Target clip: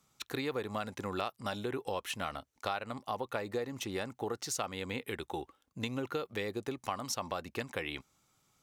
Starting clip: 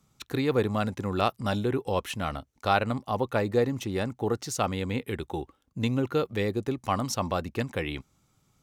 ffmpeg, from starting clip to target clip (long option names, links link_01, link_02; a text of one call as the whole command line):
ffmpeg -i in.wav -af "lowshelf=frequency=320:gain=-12,acompressor=threshold=-32dB:ratio=6" out.wav